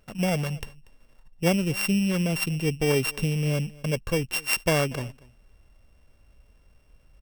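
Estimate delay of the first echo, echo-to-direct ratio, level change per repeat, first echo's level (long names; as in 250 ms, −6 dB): 238 ms, −23.0 dB, repeats not evenly spaced, −23.0 dB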